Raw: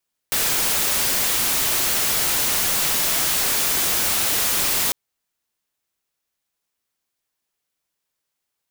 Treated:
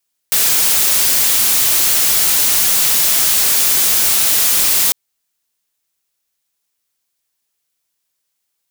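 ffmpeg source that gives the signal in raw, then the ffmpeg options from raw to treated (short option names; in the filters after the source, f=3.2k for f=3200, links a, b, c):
-f lavfi -i "anoisesrc=c=white:a=0.163:d=4.6:r=44100:seed=1"
-af "highshelf=f=2.8k:g=8.5"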